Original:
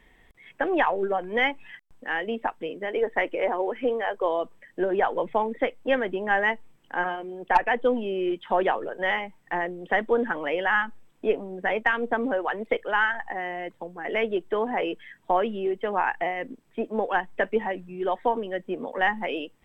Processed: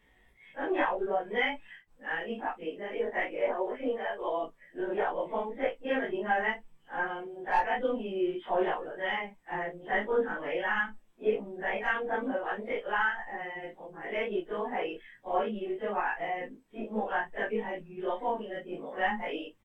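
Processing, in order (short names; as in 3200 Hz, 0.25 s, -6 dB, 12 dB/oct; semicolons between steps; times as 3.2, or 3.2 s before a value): phase scrambler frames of 0.1 s; doubler 19 ms -2.5 dB; gain -8 dB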